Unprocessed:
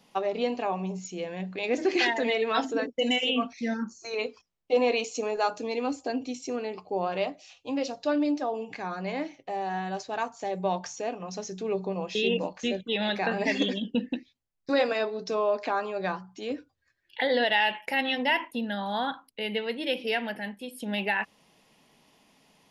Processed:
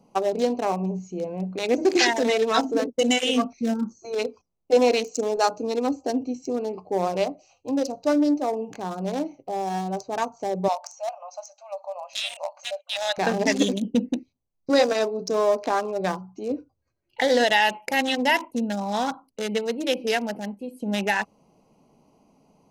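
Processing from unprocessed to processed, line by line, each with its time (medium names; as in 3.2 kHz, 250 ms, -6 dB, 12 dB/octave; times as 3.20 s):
10.68–13.18 s: brick-wall FIR high-pass 540 Hz
whole clip: local Wiener filter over 25 samples; resonant high shelf 4.3 kHz +10 dB, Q 1.5; band-stop 4.5 kHz, Q 21; trim +6 dB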